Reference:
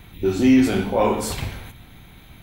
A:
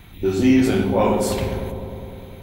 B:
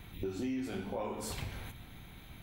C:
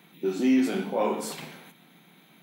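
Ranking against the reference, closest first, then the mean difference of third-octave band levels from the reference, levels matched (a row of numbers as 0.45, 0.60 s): C, A, B; 2.0, 3.5, 7.5 dB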